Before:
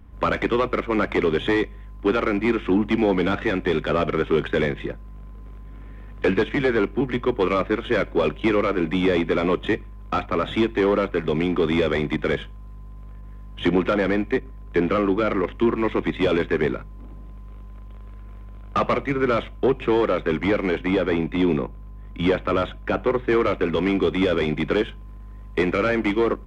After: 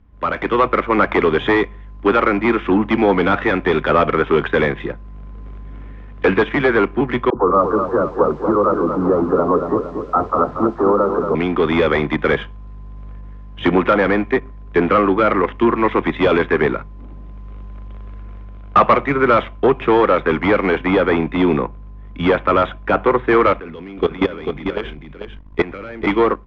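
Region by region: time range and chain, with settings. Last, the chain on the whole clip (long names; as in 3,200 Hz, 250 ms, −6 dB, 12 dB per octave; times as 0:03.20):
0:07.30–0:11.35: elliptic low-pass filter 1,300 Hz, stop band 50 dB + all-pass dispersion lows, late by 49 ms, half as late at 440 Hz + feedback echo at a low word length 233 ms, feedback 55%, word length 8 bits, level −7 dB
0:23.53–0:26.07: low-shelf EQ 170 Hz +2.5 dB + output level in coarse steps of 18 dB + single-tap delay 443 ms −6 dB
whole clip: Bessel low-pass filter 4,600 Hz, order 6; automatic gain control; dynamic equaliser 1,100 Hz, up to +8 dB, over −29 dBFS, Q 0.78; level −5 dB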